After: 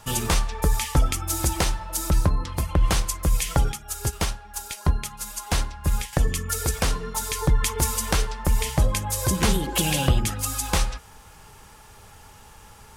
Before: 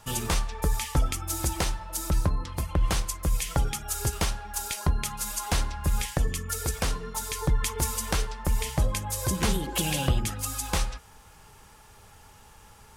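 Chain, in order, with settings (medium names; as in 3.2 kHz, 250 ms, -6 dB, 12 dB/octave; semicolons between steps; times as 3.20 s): 3.72–6.13 s: upward expansion 1.5:1, over -37 dBFS; trim +4.5 dB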